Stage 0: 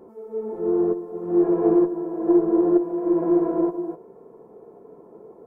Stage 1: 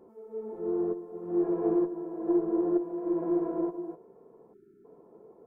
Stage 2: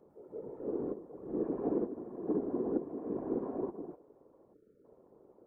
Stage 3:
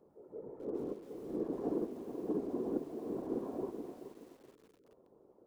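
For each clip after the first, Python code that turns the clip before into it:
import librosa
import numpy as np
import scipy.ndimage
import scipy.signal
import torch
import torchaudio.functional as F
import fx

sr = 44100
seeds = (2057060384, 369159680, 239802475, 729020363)

y1 = fx.spec_erase(x, sr, start_s=4.53, length_s=0.32, low_hz=430.0, high_hz=1300.0)
y1 = y1 * 10.0 ** (-8.5 / 20.0)
y2 = fx.whisperise(y1, sr, seeds[0])
y2 = y2 * 10.0 ** (-7.0 / 20.0)
y3 = fx.echo_crushed(y2, sr, ms=426, feedback_pct=35, bits=9, wet_db=-10)
y3 = y3 * 10.0 ** (-3.0 / 20.0)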